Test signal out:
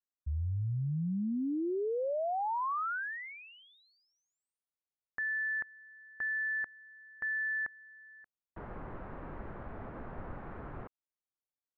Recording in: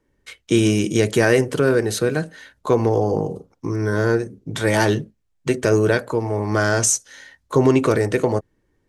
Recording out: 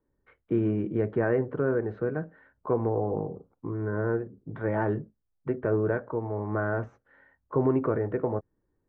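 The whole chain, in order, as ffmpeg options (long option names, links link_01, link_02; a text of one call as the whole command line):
ffmpeg -i in.wav -af "lowpass=frequency=1500:width=0.5412,lowpass=frequency=1500:width=1.3066,volume=-9dB" out.wav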